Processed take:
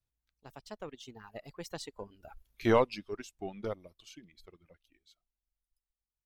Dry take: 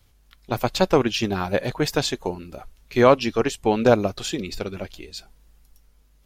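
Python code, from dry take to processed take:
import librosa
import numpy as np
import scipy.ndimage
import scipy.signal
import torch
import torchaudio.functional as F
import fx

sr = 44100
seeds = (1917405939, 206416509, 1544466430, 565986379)

y = np.where(x < 0.0, 10.0 ** (-3.0 / 20.0) * x, x)
y = fx.doppler_pass(y, sr, speed_mps=41, closest_m=9.4, pass_at_s=2.54)
y = fx.dereverb_blind(y, sr, rt60_s=1.9)
y = F.gain(torch.from_numpy(y), -5.5).numpy()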